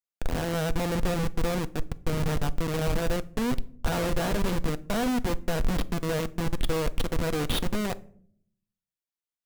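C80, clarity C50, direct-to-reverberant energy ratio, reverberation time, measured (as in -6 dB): 26.0 dB, 21.5 dB, 11.0 dB, 0.60 s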